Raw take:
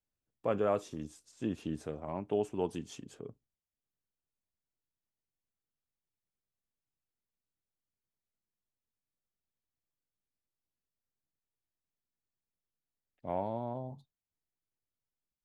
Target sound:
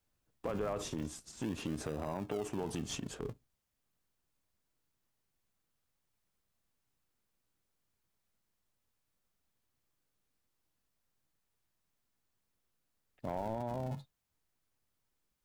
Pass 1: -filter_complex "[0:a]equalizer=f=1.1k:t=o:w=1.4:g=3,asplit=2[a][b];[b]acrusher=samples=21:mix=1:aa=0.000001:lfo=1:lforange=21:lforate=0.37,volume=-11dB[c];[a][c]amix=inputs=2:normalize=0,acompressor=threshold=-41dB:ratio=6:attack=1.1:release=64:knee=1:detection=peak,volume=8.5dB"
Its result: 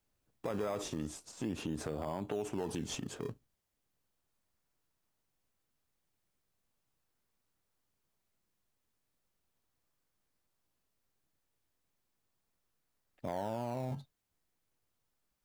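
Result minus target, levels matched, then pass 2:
decimation with a swept rate: distortion -23 dB
-filter_complex "[0:a]equalizer=f=1.1k:t=o:w=1.4:g=3,asplit=2[a][b];[b]acrusher=samples=79:mix=1:aa=0.000001:lfo=1:lforange=79:lforate=0.37,volume=-11dB[c];[a][c]amix=inputs=2:normalize=0,acompressor=threshold=-41dB:ratio=6:attack=1.1:release=64:knee=1:detection=peak,volume=8.5dB"

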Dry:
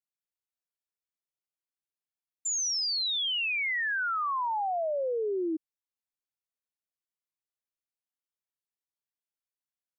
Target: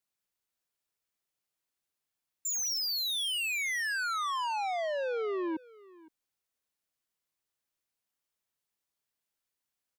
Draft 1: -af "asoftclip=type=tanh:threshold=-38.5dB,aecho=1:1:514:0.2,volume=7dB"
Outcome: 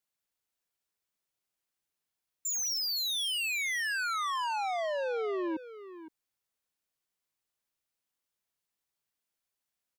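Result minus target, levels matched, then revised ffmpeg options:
echo-to-direct +8 dB
-af "asoftclip=type=tanh:threshold=-38.5dB,aecho=1:1:514:0.0794,volume=7dB"

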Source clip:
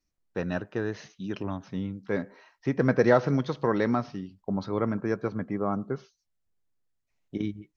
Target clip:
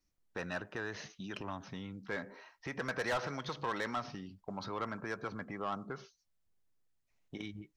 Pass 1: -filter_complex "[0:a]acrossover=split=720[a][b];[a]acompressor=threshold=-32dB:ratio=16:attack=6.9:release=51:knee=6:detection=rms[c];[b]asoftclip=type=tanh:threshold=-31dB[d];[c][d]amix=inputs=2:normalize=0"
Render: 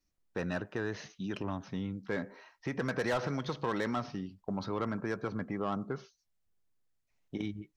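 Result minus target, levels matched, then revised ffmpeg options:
compressor: peak gain reduction -9 dB
-filter_complex "[0:a]acrossover=split=720[a][b];[a]acompressor=threshold=-41.5dB:ratio=16:attack=6.9:release=51:knee=6:detection=rms[c];[b]asoftclip=type=tanh:threshold=-31dB[d];[c][d]amix=inputs=2:normalize=0"

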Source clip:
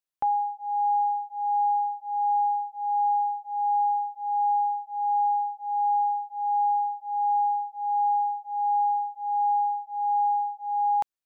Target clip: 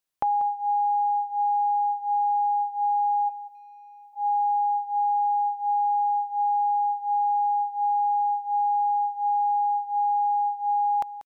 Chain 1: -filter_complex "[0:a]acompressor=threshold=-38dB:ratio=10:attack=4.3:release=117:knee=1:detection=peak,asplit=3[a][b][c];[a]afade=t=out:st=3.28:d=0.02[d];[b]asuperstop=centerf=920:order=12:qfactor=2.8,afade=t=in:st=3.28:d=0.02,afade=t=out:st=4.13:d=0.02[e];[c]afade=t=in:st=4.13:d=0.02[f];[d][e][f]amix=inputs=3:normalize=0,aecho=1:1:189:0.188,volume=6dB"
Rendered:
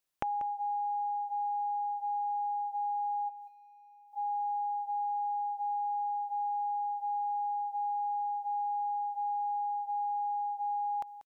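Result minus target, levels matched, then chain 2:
compressor: peak gain reduction +10 dB
-filter_complex "[0:a]acompressor=threshold=-27dB:ratio=10:attack=4.3:release=117:knee=1:detection=peak,asplit=3[a][b][c];[a]afade=t=out:st=3.28:d=0.02[d];[b]asuperstop=centerf=920:order=12:qfactor=2.8,afade=t=in:st=3.28:d=0.02,afade=t=out:st=4.13:d=0.02[e];[c]afade=t=in:st=4.13:d=0.02[f];[d][e][f]amix=inputs=3:normalize=0,aecho=1:1:189:0.188,volume=6dB"

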